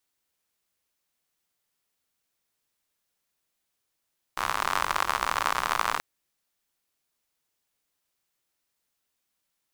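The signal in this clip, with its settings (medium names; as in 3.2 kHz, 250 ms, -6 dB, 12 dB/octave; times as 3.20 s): rain from filtered ticks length 1.63 s, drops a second 78, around 1.1 kHz, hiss -15.5 dB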